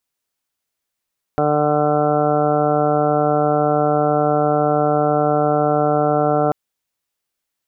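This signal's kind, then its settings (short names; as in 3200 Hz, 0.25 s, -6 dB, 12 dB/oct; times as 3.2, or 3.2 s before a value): steady additive tone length 5.14 s, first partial 149 Hz, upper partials 1/3/4/4.5/-14/-9/-10/-2.5/-18 dB, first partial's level -23.5 dB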